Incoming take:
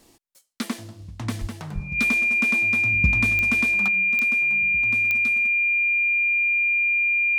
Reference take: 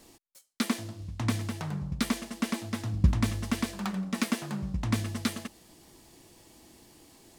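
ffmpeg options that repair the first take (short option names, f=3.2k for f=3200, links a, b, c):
-filter_complex "[0:a]adeclick=t=4,bandreject=f=2.4k:w=30,asplit=3[a][b][c];[a]afade=t=out:st=1.4:d=0.02[d];[b]highpass=f=140:w=0.5412,highpass=f=140:w=1.3066,afade=t=in:st=1.4:d=0.02,afade=t=out:st=1.52:d=0.02[e];[c]afade=t=in:st=1.52:d=0.02[f];[d][e][f]amix=inputs=3:normalize=0,asplit=3[g][h][i];[g]afade=t=out:st=1.74:d=0.02[j];[h]highpass=f=140:w=0.5412,highpass=f=140:w=1.3066,afade=t=in:st=1.74:d=0.02,afade=t=out:st=1.86:d=0.02[k];[i]afade=t=in:st=1.86:d=0.02[l];[j][k][l]amix=inputs=3:normalize=0,asetnsamples=n=441:p=0,asendcmd='3.88 volume volume 10.5dB',volume=0dB"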